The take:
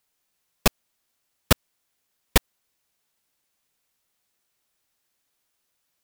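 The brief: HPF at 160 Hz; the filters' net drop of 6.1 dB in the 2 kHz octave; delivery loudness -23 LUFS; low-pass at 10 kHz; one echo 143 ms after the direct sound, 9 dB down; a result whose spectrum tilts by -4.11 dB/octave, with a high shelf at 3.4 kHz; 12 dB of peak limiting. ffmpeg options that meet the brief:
-af "highpass=160,lowpass=10000,equalizer=f=2000:t=o:g=-5,highshelf=f=3400:g=-9,alimiter=limit=0.112:level=0:latency=1,aecho=1:1:143:0.355,volume=7.94"

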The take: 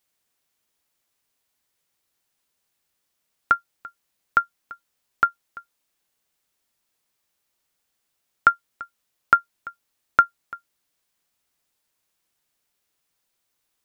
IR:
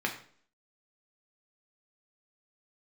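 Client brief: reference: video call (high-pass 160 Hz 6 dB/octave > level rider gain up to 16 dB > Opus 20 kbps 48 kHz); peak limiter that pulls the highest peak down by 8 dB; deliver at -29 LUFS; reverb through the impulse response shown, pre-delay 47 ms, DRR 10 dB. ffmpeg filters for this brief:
-filter_complex "[0:a]alimiter=limit=0.299:level=0:latency=1,asplit=2[s0][s1];[1:a]atrim=start_sample=2205,adelay=47[s2];[s1][s2]afir=irnorm=-1:irlink=0,volume=0.133[s3];[s0][s3]amix=inputs=2:normalize=0,highpass=f=160:p=1,dynaudnorm=m=6.31,volume=0.944" -ar 48000 -c:a libopus -b:a 20k

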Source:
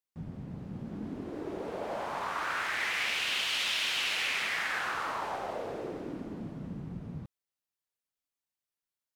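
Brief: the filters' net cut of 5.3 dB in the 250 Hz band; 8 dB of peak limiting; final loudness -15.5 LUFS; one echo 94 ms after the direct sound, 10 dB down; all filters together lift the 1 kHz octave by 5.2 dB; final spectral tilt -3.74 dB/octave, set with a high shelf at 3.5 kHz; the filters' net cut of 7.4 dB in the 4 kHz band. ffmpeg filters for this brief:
-af "equalizer=f=250:t=o:g=-8,equalizer=f=1000:t=o:g=8,highshelf=f=3500:g=-8,equalizer=f=4000:t=o:g=-6,alimiter=level_in=1.19:limit=0.0631:level=0:latency=1,volume=0.841,aecho=1:1:94:0.316,volume=10"

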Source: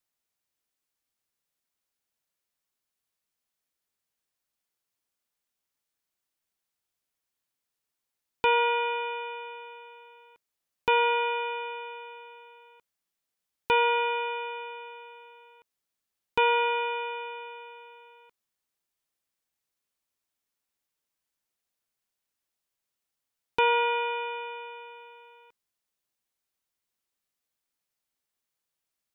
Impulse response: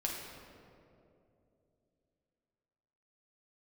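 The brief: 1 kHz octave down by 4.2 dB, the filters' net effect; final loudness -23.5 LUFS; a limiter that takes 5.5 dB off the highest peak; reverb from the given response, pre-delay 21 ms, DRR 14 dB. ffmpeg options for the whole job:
-filter_complex "[0:a]equalizer=f=1000:t=o:g=-4.5,alimiter=limit=0.112:level=0:latency=1,asplit=2[s0][s1];[1:a]atrim=start_sample=2205,adelay=21[s2];[s1][s2]afir=irnorm=-1:irlink=0,volume=0.141[s3];[s0][s3]amix=inputs=2:normalize=0,volume=2.37"

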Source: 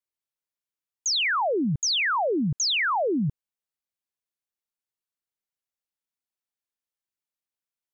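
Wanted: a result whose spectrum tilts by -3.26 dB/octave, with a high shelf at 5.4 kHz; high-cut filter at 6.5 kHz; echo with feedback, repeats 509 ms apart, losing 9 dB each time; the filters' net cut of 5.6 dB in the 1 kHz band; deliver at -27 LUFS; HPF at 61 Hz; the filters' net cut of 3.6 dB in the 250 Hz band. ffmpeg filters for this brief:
-af "highpass=61,lowpass=6500,equalizer=f=250:t=o:g=-4.5,equalizer=f=1000:t=o:g=-7,highshelf=f=5400:g=-4.5,aecho=1:1:509|1018|1527|2036:0.355|0.124|0.0435|0.0152"

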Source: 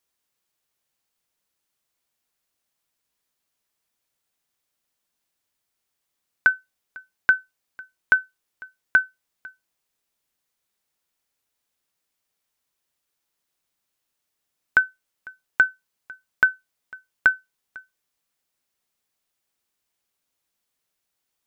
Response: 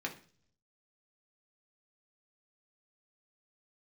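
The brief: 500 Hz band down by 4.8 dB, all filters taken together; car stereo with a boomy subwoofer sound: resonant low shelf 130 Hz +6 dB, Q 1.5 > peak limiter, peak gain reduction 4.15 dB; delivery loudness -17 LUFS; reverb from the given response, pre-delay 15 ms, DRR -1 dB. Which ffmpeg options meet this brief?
-filter_complex "[0:a]equalizer=f=500:t=o:g=-6,asplit=2[s0][s1];[1:a]atrim=start_sample=2205,adelay=15[s2];[s1][s2]afir=irnorm=-1:irlink=0,volume=0.841[s3];[s0][s3]amix=inputs=2:normalize=0,lowshelf=f=130:t=q:w=1.5:g=6,volume=1.68,alimiter=limit=0.531:level=0:latency=1"

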